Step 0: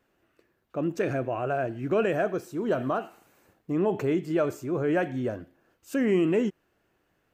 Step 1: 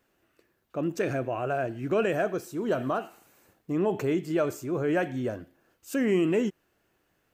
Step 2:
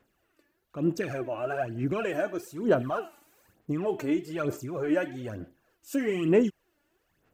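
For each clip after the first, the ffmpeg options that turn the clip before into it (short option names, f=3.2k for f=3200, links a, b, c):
-af "highshelf=f=3.9k:g=6.5,volume=-1dB"
-af "aphaser=in_gain=1:out_gain=1:delay=3.5:decay=0.64:speed=1.1:type=sinusoidal,volume=-4dB"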